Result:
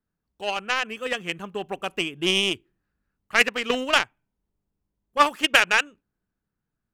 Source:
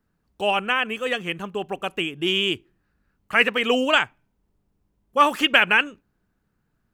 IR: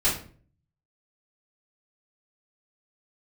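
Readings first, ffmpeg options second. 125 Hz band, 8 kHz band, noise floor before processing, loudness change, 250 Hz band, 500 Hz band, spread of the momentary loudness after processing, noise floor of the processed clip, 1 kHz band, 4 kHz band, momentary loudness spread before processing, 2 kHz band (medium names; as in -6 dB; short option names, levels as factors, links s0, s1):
-2.5 dB, +8.0 dB, -72 dBFS, -1.5 dB, -4.0 dB, -3.5 dB, 14 LU, -83 dBFS, -2.5 dB, -1.0 dB, 13 LU, -2.0 dB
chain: -af "aeval=exprs='0.891*(cos(1*acos(clip(val(0)/0.891,-1,1)))-cos(1*PI/2))+0.0891*(cos(7*acos(clip(val(0)/0.891,-1,1)))-cos(7*PI/2))':c=same,dynaudnorm=f=130:g=13:m=3.16,volume=0.891"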